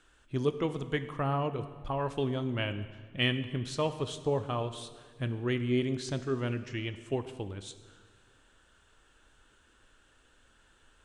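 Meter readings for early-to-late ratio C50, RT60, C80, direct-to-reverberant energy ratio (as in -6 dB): 12.0 dB, 1.7 s, 13.5 dB, 10.0 dB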